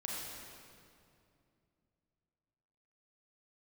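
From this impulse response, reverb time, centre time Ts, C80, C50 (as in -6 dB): 2.5 s, 140 ms, -0.5 dB, -2.5 dB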